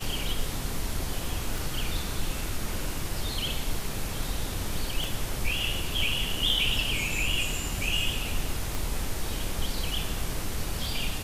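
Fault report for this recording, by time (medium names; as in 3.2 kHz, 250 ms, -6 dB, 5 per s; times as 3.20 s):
1.58 s: pop
5.04 s: pop
8.75 s: pop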